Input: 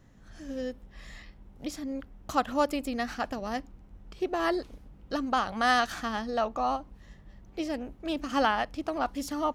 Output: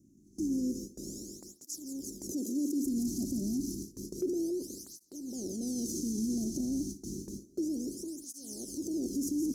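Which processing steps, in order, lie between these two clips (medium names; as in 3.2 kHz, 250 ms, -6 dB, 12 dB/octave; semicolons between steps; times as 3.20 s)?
spectral levelling over time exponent 0.6; Chebyshev band-stop 370–6000 Hz, order 4; feedback echo behind a high-pass 172 ms, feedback 79%, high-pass 2.6 kHz, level -3.5 dB; in parallel at +1 dB: compressor with a negative ratio -36 dBFS, ratio -0.5; on the sum: peak limiter -24 dBFS, peak gain reduction 7.5 dB; 2.32–2.86 s: steep high-pass 200 Hz; 7.92–8.74 s: peaking EQ 9.7 kHz +7.5 dB 0.27 oct; gate with hold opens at -26 dBFS; on a send at -16.5 dB: reverberation RT60 0.55 s, pre-delay 53 ms; on the sum: cancelling through-zero flanger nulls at 0.3 Hz, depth 2.3 ms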